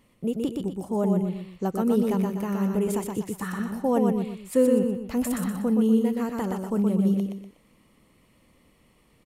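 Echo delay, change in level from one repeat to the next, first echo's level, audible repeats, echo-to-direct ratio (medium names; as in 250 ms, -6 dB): 122 ms, -8.5 dB, -3.5 dB, 3, -3.0 dB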